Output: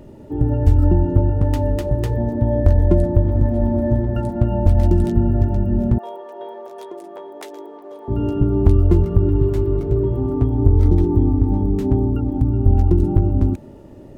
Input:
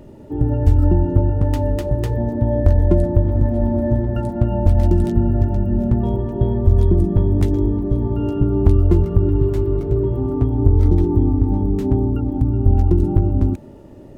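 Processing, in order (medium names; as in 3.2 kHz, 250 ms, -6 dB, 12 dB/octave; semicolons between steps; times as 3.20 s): 5.98–8.08 s: high-pass 540 Hz 24 dB/octave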